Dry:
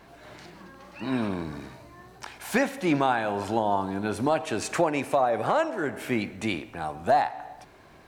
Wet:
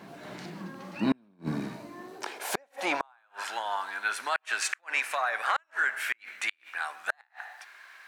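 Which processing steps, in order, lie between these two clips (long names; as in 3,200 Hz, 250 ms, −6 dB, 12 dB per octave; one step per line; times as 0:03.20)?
high-pass filter sweep 180 Hz → 1,600 Hz, 0:01.69–0:03.44
gate with flip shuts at −17 dBFS, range −40 dB
level +2.5 dB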